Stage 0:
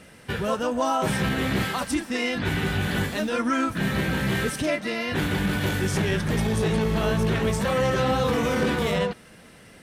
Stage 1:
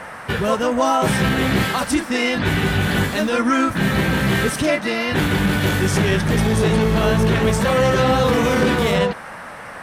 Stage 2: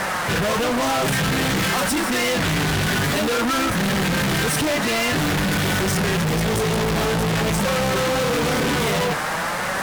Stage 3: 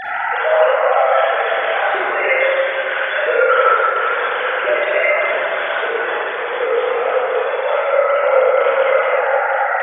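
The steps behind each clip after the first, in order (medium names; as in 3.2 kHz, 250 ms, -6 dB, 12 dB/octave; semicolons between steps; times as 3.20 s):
band noise 490–1900 Hz -42 dBFS; trim +6.5 dB
flange 0.51 Hz, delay 5.1 ms, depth 2.4 ms, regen +48%; fuzz box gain 42 dB, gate -44 dBFS; trim -6.5 dB
formants replaced by sine waves; reverberation RT60 3.5 s, pre-delay 33 ms, DRR -8.5 dB; trim -5 dB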